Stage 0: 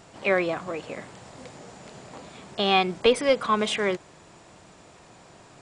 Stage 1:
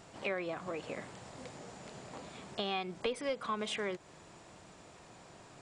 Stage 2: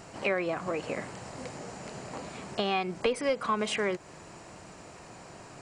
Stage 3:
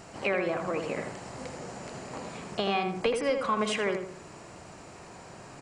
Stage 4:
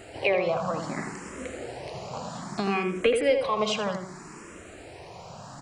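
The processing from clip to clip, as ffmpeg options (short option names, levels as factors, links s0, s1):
-af "acompressor=threshold=0.0282:ratio=3,volume=0.596"
-af "equalizer=f=3500:t=o:w=0.2:g=-9.5,volume=2.37"
-filter_complex "[0:a]asplit=2[s0][s1];[s1]adelay=81,lowpass=f=2000:p=1,volume=0.562,asplit=2[s2][s3];[s3]adelay=81,lowpass=f=2000:p=1,volume=0.41,asplit=2[s4][s5];[s5]adelay=81,lowpass=f=2000:p=1,volume=0.41,asplit=2[s6][s7];[s7]adelay=81,lowpass=f=2000:p=1,volume=0.41,asplit=2[s8][s9];[s9]adelay=81,lowpass=f=2000:p=1,volume=0.41[s10];[s0][s2][s4][s6][s8][s10]amix=inputs=6:normalize=0"
-filter_complex "[0:a]asplit=2[s0][s1];[s1]afreqshift=0.63[s2];[s0][s2]amix=inputs=2:normalize=1,volume=2"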